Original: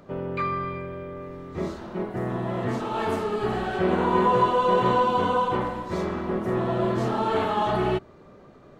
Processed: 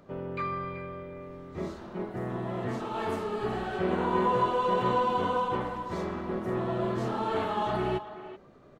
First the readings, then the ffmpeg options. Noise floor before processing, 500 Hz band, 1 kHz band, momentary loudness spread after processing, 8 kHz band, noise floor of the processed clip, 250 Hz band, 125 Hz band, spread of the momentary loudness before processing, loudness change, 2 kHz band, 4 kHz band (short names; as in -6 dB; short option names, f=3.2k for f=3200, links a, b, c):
-50 dBFS, -5.5 dB, -5.0 dB, 14 LU, n/a, -54 dBFS, -5.5 dB, -5.5 dB, 12 LU, -5.5 dB, -5.0 dB, -5.5 dB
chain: -filter_complex "[0:a]asplit=2[a][b];[b]adelay=380,highpass=300,lowpass=3.4k,asoftclip=type=hard:threshold=-17dB,volume=-12dB[c];[a][c]amix=inputs=2:normalize=0,volume=-5.5dB"